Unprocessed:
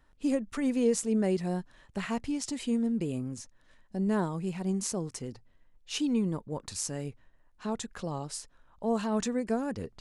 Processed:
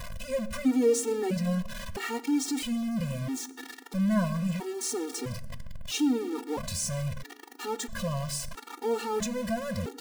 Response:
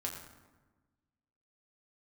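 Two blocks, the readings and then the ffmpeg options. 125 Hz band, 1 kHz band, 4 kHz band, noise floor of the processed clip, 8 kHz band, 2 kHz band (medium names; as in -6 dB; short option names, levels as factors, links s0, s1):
+3.5 dB, +2.0 dB, +4.0 dB, -49 dBFS, +3.5 dB, +4.5 dB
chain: -filter_complex "[0:a]aeval=exprs='val(0)+0.5*0.0251*sgn(val(0))':c=same,asplit=2[s0][s1];[1:a]atrim=start_sample=2205[s2];[s1][s2]afir=irnorm=-1:irlink=0,volume=0.355[s3];[s0][s3]amix=inputs=2:normalize=0,afftfilt=real='re*gt(sin(2*PI*0.76*pts/sr)*(1-2*mod(floor(b*sr/1024/240),2)),0)':imag='im*gt(sin(2*PI*0.76*pts/sr)*(1-2*mod(floor(b*sr/1024/240),2)),0)':win_size=1024:overlap=0.75"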